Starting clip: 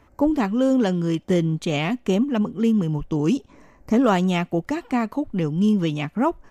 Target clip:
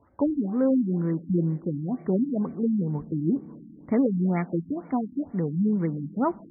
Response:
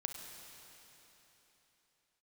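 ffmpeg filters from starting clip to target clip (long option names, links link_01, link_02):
-filter_complex "[0:a]highpass=82,bandreject=frequency=384.5:width_type=h:width=4,bandreject=frequency=769:width_type=h:width=4,bandreject=frequency=1153.5:width_type=h:width=4,bandreject=frequency=1538:width_type=h:width=4,asplit=2[link_01][link_02];[1:a]atrim=start_sample=2205,lowshelf=frequency=260:gain=7,adelay=11[link_03];[link_02][link_03]afir=irnorm=-1:irlink=0,volume=-16dB[link_04];[link_01][link_04]amix=inputs=2:normalize=0,afftfilt=real='re*lt(b*sr/1024,300*pow(2400/300,0.5+0.5*sin(2*PI*2.1*pts/sr)))':imag='im*lt(b*sr/1024,300*pow(2400/300,0.5+0.5*sin(2*PI*2.1*pts/sr)))':win_size=1024:overlap=0.75,volume=-4dB"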